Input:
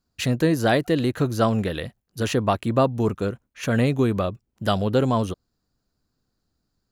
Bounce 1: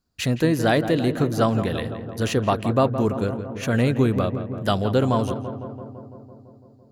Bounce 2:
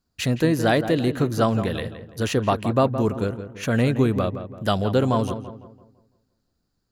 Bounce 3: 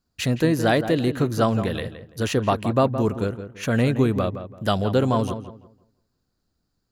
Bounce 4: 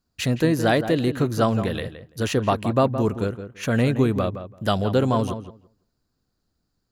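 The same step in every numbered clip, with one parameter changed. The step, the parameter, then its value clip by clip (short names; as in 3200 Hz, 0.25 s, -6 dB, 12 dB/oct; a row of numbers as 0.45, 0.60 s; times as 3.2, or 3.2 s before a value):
darkening echo, feedback: 74, 42, 28, 16%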